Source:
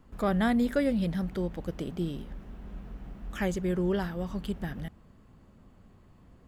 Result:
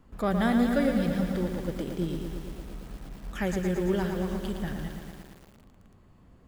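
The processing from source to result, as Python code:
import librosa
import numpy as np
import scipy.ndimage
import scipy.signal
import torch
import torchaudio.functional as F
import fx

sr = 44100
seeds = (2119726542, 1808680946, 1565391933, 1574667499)

y = fx.echo_crushed(x, sr, ms=114, feedback_pct=80, bits=8, wet_db=-6.5)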